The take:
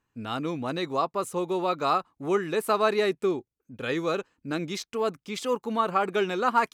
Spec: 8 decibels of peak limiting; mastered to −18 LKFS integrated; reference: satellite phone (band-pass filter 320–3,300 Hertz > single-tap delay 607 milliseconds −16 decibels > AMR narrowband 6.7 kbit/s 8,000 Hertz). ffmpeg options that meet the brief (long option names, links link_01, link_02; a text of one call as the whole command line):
ffmpeg -i in.wav -af "alimiter=limit=-18.5dB:level=0:latency=1,highpass=320,lowpass=3300,aecho=1:1:607:0.158,volume=14dB" -ar 8000 -c:a libopencore_amrnb -b:a 6700 out.amr